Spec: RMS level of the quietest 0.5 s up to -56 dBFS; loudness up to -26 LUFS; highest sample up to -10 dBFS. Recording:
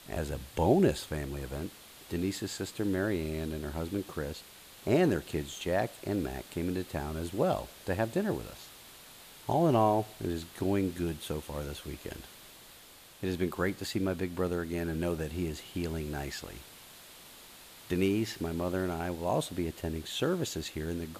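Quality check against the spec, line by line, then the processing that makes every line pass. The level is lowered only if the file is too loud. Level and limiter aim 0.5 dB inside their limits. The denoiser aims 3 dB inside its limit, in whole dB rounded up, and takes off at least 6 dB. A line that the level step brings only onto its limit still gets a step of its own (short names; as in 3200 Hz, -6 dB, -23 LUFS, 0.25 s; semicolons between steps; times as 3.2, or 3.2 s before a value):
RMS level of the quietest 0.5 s -54 dBFS: fail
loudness -33.0 LUFS: OK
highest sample -12.0 dBFS: OK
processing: denoiser 6 dB, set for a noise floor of -54 dBFS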